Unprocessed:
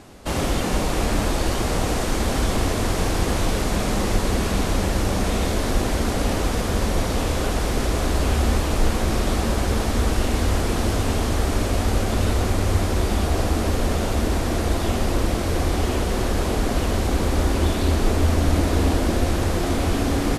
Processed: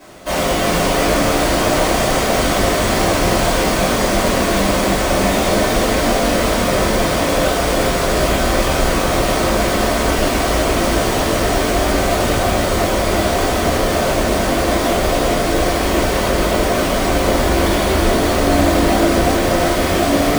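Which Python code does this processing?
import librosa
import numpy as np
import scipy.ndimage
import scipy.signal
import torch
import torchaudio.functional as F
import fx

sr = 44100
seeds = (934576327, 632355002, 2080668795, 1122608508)

y = np.repeat(x[::3], 3)[:len(x)]
y = fx.highpass(y, sr, hz=370.0, slope=6)
y = y + 10.0 ** (-4.5 / 20.0) * np.pad(y, (int(359 * sr / 1000.0), 0))[:len(y)]
y = fx.room_shoebox(y, sr, seeds[0], volume_m3=38.0, walls='mixed', distance_m=2.6)
y = F.gain(torch.from_numpy(y), -4.0).numpy()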